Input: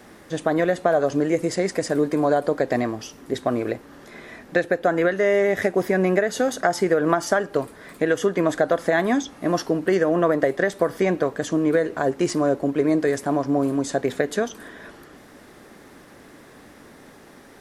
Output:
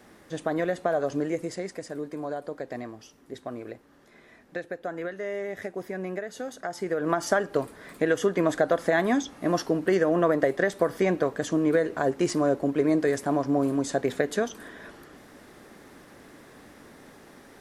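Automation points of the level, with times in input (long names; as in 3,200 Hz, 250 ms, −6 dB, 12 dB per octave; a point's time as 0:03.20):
0:01.22 −6.5 dB
0:01.86 −13.5 dB
0:06.65 −13.5 dB
0:07.28 −3 dB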